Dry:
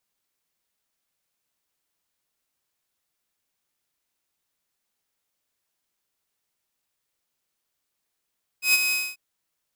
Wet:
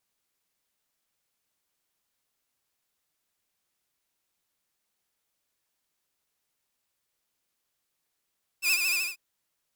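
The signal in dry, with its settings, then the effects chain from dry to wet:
note with an ADSR envelope saw 2,530 Hz, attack 120 ms, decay 28 ms, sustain −7 dB, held 0.30 s, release 241 ms −12 dBFS
downward compressor 3 to 1, threshold −24 dBFS
pitch vibrato 13 Hz 90 cents

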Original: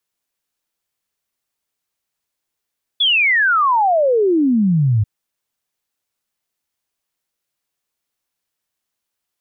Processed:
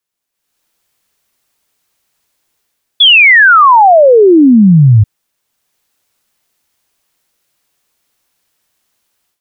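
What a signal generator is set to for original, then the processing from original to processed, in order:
exponential sine sweep 3,500 Hz → 100 Hz 2.04 s −11.5 dBFS
automatic gain control gain up to 15 dB

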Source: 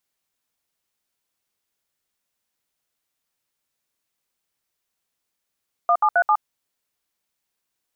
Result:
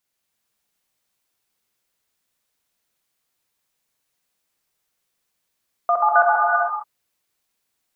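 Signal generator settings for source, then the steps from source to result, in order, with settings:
touch tones "1737", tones 66 ms, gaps 67 ms, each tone −16.5 dBFS
reverb whose tail is shaped and stops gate 490 ms flat, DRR −2.5 dB

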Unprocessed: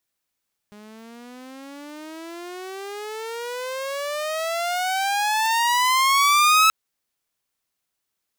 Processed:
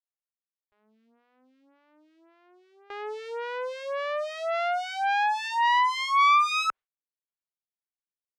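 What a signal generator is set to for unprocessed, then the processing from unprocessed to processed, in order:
pitch glide with a swell saw, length 5.98 s, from 206 Hz, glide +32 semitones, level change +29.5 dB, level −10 dB
low-pass filter 3,000 Hz 12 dB per octave
noise gate with hold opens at −29 dBFS
phaser with staggered stages 1.8 Hz

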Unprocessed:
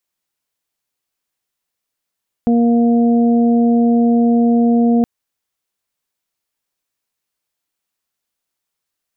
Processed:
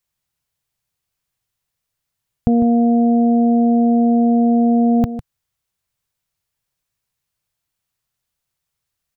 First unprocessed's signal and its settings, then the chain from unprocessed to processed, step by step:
steady harmonic partials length 2.57 s, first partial 235 Hz, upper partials −10/−13 dB, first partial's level −10 dB
low shelf with overshoot 180 Hz +10.5 dB, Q 1.5
single-tap delay 152 ms −12 dB

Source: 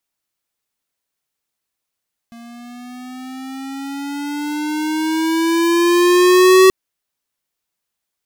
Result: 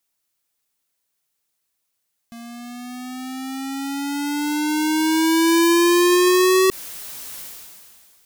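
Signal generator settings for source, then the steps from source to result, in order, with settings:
pitch glide with a swell square, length 4.38 s, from 232 Hz, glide +8.5 semitones, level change +30 dB, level −7.5 dB
high-shelf EQ 5,000 Hz +6.5 dB
brickwall limiter −9 dBFS
level that may fall only so fast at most 27 dB per second

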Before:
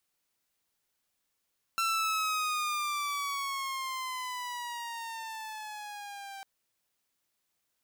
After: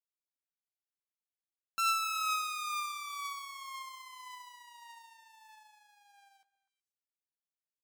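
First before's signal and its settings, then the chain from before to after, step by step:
pitch glide with a swell saw, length 4.65 s, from 1,350 Hz, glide −9.5 semitones, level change −15 dB, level −24 dB
double-tracking delay 15 ms −12.5 dB
on a send: echo through a band-pass that steps 123 ms, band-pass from 450 Hz, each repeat 1.4 octaves, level −7 dB
on the sum: expander for the loud parts 2.5 to 1, over −46 dBFS

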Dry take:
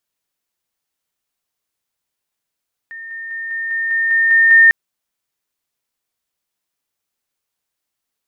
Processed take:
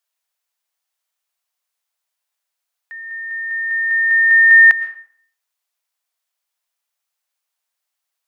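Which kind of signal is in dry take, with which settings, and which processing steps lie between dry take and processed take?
level staircase 1,820 Hz −29 dBFS, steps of 3 dB, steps 9, 0.20 s 0.00 s
high-pass filter 590 Hz 24 dB per octave
comb and all-pass reverb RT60 0.56 s, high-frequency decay 0.7×, pre-delay 80 ms, DRR 13 dB

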